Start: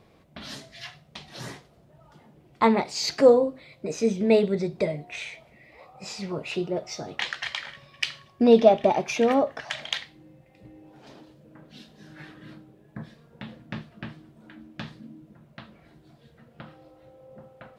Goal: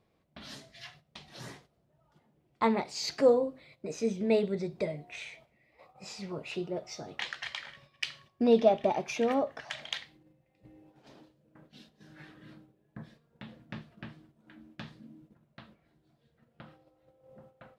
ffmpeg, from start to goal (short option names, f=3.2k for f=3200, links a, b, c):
-af "agate=range=-8dB:threshold=-50dB:ratio=16:detection=peak,volume=-7dB"